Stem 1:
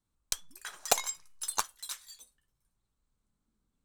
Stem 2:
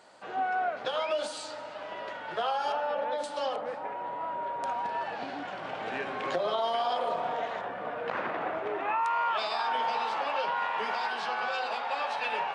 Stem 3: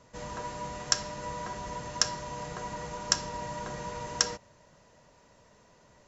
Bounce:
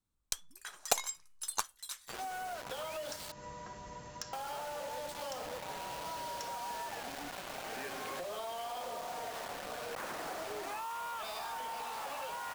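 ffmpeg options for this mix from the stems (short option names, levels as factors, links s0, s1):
-filter_complex "[0:a]volume=0.668[s0];[1:a]acrusher=bits=5:mix=0:aa=0.000001,adelay=1850,volume=0.841,asplit=3[s1][s2][s3];[s1]atrim=end=3.32,asetpts=PTS-STARTPTS,afade=t=out:st=3.316:d=0.004:c=hsin[s4];[s2]atrim=start=3.32:end=4.33,asetpts=PTS-STARTPTS,volume=0[s5];[s3]atrim=start=4.33,asetpts=PTS-STARTPTS,afade=t=in:d=0.004:c=hsin[s6];[s4][s5][s6]concat=n=3:v=0:a=1[s7];[2:a]adelay=2200,volume=0.335[s8];[s7][s8]amix=inputs=2:normalize=0,asoftclip=type=tanh:threshold=0.0473,acompressor=threshold=0.0112:ratio=6,volume=1[s9];[s0][s9]amix=inputs=2:normalize=0"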